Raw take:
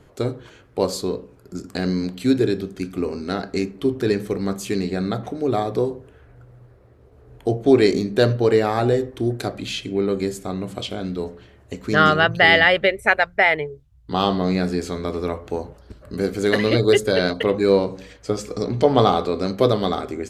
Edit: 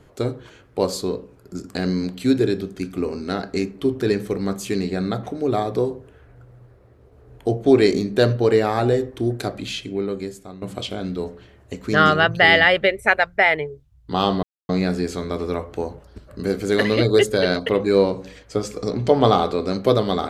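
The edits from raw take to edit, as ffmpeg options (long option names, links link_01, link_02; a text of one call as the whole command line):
ffmpeg -i in.wav -filter_complex "[0:a]asplit=3[link_01][link_02][link_03];[link_01]atrim=end=10.62,asetpts=PTS-STARTPTS,afade=type=out:start_time=9.59:duration=1.03:silence=0.211349[link_04];[link_02]atrim=start=10.62:end=14.43,asetpts=PTS-STARTPTS,afade=type=in:duration=0.004:curve=hsin:silence=0.211349,afade=type=out:start_time=3.806:duration=0.004:curve=hsin,apad=pad_dur=0.26[link_05];[link_03]atrim=start=14.43,asetpts=PTS-STARTPTS,afade=type=in:duration=0.004:curve=hsin[link_06];[link_04][link_05][link_06]concat=n=3:v=0:a=1" out.wav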